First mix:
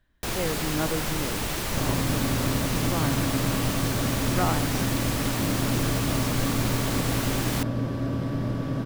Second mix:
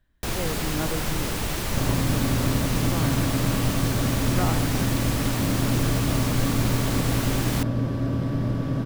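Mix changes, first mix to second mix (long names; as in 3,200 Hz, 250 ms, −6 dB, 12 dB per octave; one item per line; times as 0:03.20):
speech −3.0 dB
master: add low-shelf EQ 220 Hz +4.5 dB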